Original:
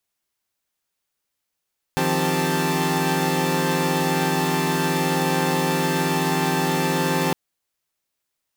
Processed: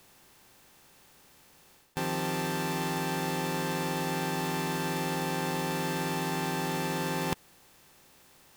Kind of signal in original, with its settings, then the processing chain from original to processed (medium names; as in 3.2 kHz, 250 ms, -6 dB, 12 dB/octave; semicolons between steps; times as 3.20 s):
chord D#3/F3/C4/G4/A5 saw, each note -23.5 dBFS 5.36 s
spectral levelling over time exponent 0.6; reverse; compression 6:1, threshold -29 dBFS; reverse